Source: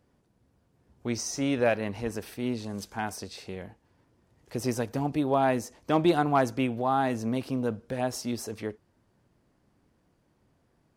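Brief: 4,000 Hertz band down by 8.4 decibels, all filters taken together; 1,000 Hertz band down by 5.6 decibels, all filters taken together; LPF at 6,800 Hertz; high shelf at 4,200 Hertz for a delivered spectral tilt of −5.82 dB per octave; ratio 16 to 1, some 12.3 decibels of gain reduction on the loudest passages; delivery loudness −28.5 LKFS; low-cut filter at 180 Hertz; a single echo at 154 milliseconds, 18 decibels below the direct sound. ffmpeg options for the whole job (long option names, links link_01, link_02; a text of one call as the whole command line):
ffmpeg -i in.wav -af "highpass=180,lowpass=6800,equalizer=frequency=1000:width_type=o:gain=-7.5,equalizer=frequency=4000:width_type=o:gain=-5,highshelf=frequency=4200:gain=-8.5,acompressor=threshold=-31dB:ratio=16,aecho=1:1:154:0.126,volume=10dB" out.wav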